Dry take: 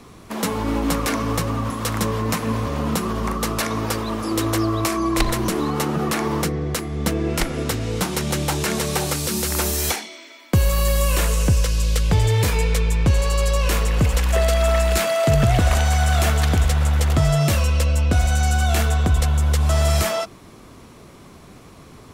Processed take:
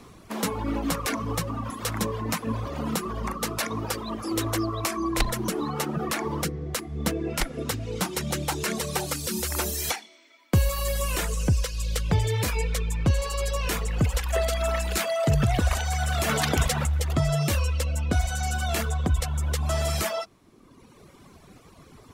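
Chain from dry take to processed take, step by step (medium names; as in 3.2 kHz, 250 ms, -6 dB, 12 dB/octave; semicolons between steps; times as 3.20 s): 16.28–16.85 s: spectral peaks clipped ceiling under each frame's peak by 13 dB; reverb removal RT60 1.4 s; trim -3.5 dB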